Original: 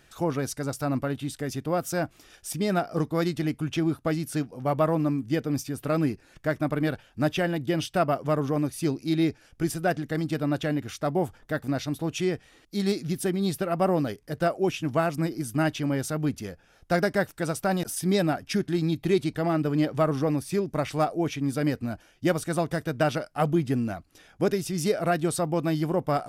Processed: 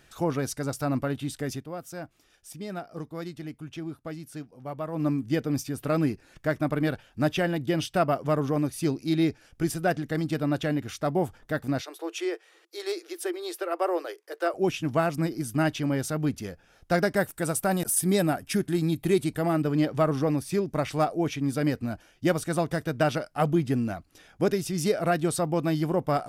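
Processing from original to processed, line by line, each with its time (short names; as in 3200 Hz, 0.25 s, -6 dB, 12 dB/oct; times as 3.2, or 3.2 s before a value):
1.52–5.06 dip -10.5 dB, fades 0.14 s
11.81–14.54 rippled Chebyshev high-pass 330 Hz, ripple 3 dB
17.16–19.62 resonant high shelf 7000 Hz +7 dB, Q 1.5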